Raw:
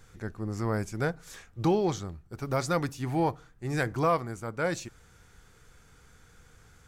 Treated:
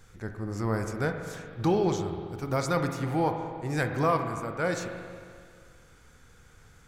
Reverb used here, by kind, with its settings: spring tank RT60 2.1 s, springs 40/44 ms, chirp 30 ms, DRR 5 dB

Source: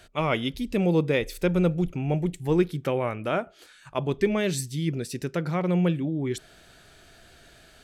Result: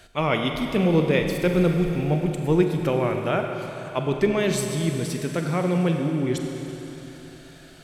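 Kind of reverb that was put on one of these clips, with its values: Schroeder reverb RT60 3.6 s, combs from 32 ms, DRR 3.5 dB; gain +2 dB

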